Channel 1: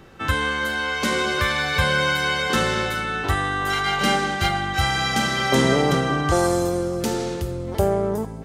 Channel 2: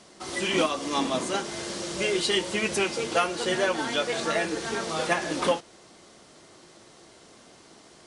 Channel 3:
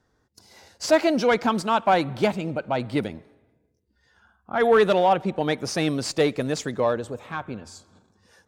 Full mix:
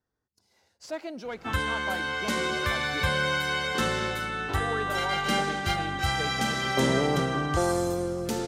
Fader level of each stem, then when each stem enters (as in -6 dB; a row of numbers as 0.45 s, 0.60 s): -6.0 dB, mute, -16.5 dB; 1.25 s, mute, 0.00 s